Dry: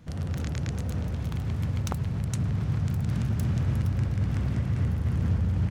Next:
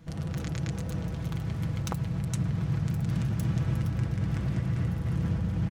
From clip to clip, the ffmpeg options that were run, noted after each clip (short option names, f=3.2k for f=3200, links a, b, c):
-af "aecho=1:1:6.1:0.5,volume=-1.5dB"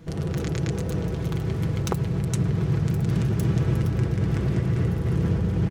-af "equalizer=f=400:w=3.9:g=14.5,volume=5dB"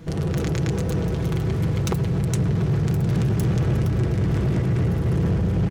-af "asoftclip=type=tanh:threshold=-20.5dB,volume=5dB"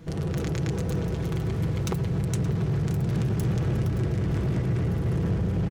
-af "aecho=1:1:573:0.188,volume=-4.5dB"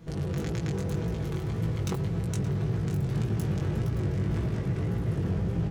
-af "flanger=delay=17.5:depth=4.1:speed=1.8"